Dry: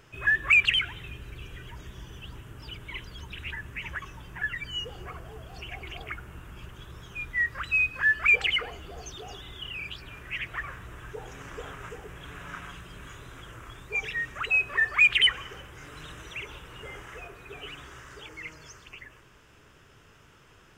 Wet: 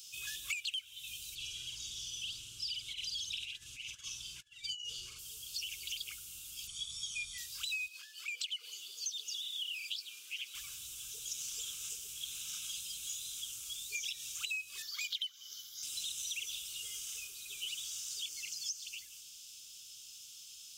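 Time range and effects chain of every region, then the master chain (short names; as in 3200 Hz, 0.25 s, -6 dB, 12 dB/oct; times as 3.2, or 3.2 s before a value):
1.35–5.19 air absorption 69 m + doubler 50 ms -2 dB + negative-ratio compressor -38 dBFS, ratio -0.5
6.67–7.38 steep low-pass 10000 Hz 48 dB/oct + comb 0.9 ms, depth 80%
7.88–10.55 HPF 350 Hz + high shelf 4300 Hz -7.5 dB + compressor 3:1, threshold -34 dBFS
14.82–15.83 HPF 320 Hz 6 dB/oct + fixed phaser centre 2600 Hz, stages 6
whole clip: inverse Chebyshev high-pass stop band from 2000 Hz, stop band 40 dB; compressor 16:1, threshold -53 dBFS; gain +17.5 dB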